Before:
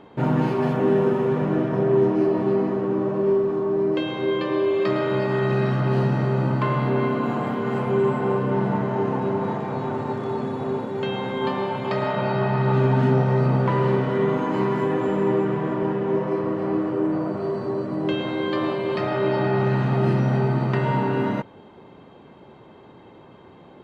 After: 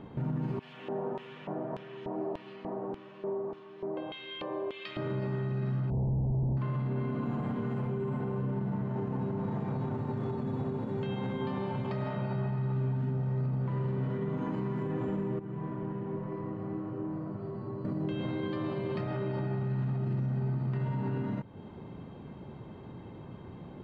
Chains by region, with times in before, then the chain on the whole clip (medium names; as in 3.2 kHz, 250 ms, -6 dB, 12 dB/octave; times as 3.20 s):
0.59–4.97 s: LFO band-pass square 1.7 Hz 740–3000 Hz + treble shelf 4.1 kHz +7 dB
5.90–6.57 s: Schmitt trigger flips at -26.5 dBFS + elliptic low-pass 900 Hz
15.39–17.85 s: distance through air 90 m + feedback comb 110 Hz, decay 0.95 s, mix 80%
whole clip: tone controls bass +13 dB, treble -3 dB; compression 2.5:1, threshold -27 dBFS; peak limiter -21 dBFS; trim -4.5 dB